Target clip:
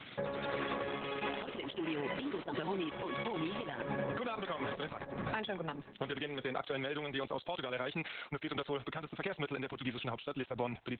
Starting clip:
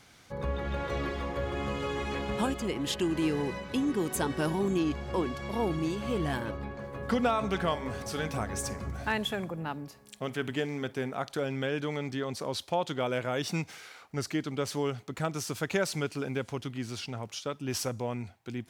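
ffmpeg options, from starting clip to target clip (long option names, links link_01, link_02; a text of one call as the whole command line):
ffmpeg -i in.wav -filter_complex "[0:a]highpass=frequency=120:width=0.5412,highpass=frequency=120:width=1.3066,aemphasis=mode=production:type=75fm,acrossover=split=420|1000[link_01][link_02][link_03];[link_01]acompressor=threshold=-43dB:ratio=4[link_04];[link_02]acompressor=threshold=-34dB:ratio=4[link_05];[link_03]acompressor=threshold=-33dB:ratio=4[link_06];[link_04][link_05][link_06]amix=inputs=3:normalize=0,alimiter=level_in=2dB:limit=-24dB:level=0:latency=1:release=360,volume=-2dB,acompressor=threshold=-40dB:ratio=16,atempo=1.7,tremolo=f=1.5:d=0.3,aresample=8000,aresample=44100,volume=10dB" -ar 48000 -c:a libopus -b:a 8k out.opus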